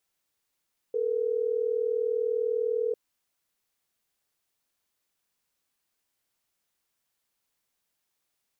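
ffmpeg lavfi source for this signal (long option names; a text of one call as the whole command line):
ffmpeg -f lavfi -i "aevalsrc='0.0422*(sin(2*PI*440*t)+sin(2*PI*480*t))*clip(min(mod(t,6),2-mod(t,6))/0.005,0,1)':duration=3.12:sample_rate=44100" out.wav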